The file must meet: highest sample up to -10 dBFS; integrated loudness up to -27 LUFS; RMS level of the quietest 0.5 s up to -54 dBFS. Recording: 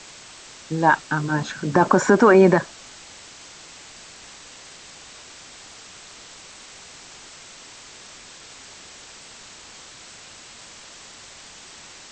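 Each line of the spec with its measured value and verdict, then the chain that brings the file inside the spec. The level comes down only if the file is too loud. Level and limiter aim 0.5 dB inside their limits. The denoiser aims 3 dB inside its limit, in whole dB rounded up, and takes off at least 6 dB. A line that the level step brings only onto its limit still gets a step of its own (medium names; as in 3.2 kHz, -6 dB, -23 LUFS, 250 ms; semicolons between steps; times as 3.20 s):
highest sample -4.5 dBFS: fail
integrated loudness -18.0 LUFS: fail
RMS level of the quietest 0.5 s -44 dBFS: fail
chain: noise reduction 6 dB, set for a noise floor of -44 dBFS; trim -9.5 dB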